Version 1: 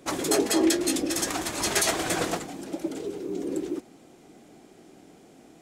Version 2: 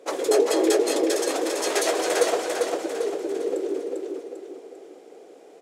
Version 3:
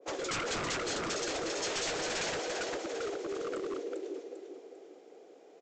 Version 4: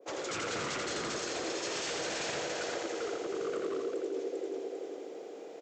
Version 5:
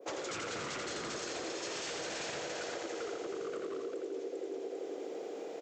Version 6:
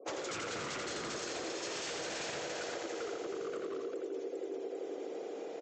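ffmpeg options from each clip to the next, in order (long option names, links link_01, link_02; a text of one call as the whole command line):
ffmpeg -i in.wav -af "highpass=frequency=470:width_type=q:width=4.9,highshelf=frequency=11000:gain=-7,aecho=1:1:397|794|1191|1588|1985|2382:0.708|0.311|0.137|0.0603|0.0265|0.0117,volume=-2dB" out.wav
ffmpeg -i in.wav -af "aresample=16000,aeval=exprs='0.0708*(abs(mod(val(0)/0.0708+3,4)-2)-1)':channel_layout=same,aresample=44100,adynamicequalizer=threshold=0.00794:dfrequency=1700:dqfactor=0.7:tfrequency=1700:tqfactor=0.7:attack=5:release=100:ratio=0.375:range=2:mode=boostabove:tftype=highshelf,volume=-8dB" out.wav
ffmpeg -i in.wav -af "highpass=75,areverse,acompressor=threshold=-44dB:ratio=6,areverse,aecho=1:1:85|170|255|340|425|510|595|680:0.668|0.374|0.21|0.117|0.0657|0.0368|0.0206|0.0115,volume=7.5dB" out.wav
ffmpeg -i in.wav -af "acompressor=threshold=-41dB:ratio=6,volume=4dB" out.wav
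ffmpeg -i in.wav -af "afftfilt=real='re*gte(hypot(re,im),0.000891)':imag='im*gte(hypot(re,im),0.000891)':win_size=1024:overlap=0.75" out.wav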